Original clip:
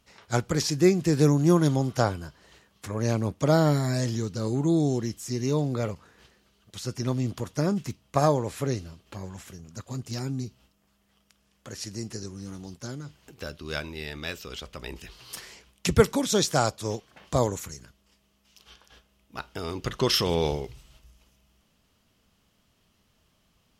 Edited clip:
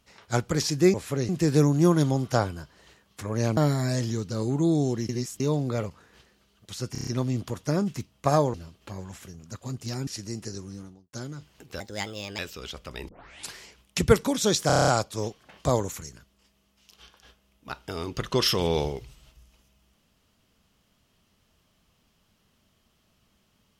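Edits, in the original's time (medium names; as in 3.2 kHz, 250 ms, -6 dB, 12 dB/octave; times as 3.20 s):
3.22–3.62 s: delete
5.14–5.45 s: reverse
6.97 s: stutter 0.03 s, 6 plays
8.44–8.79 s: move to 0.94 s
10.32–11.75 s: delete
12.33–12.81 s: studio fade out
13.48–14.27 s: speed 135%
14.97 s: tape start 0.45 s
16.55 s: stutter 0.03 s, 8 plays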